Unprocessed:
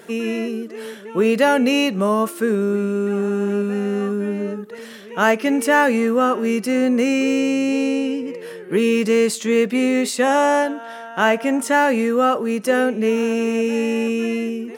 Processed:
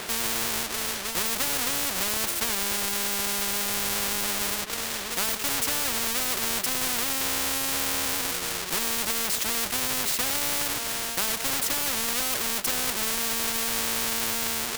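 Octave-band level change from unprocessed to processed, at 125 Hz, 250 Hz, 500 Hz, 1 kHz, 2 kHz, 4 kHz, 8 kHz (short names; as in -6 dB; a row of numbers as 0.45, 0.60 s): n/a, -19.5 dB, -18.5 dB, -11.0 dB, -7.0 dB, +4.0 dB, +8.0 dB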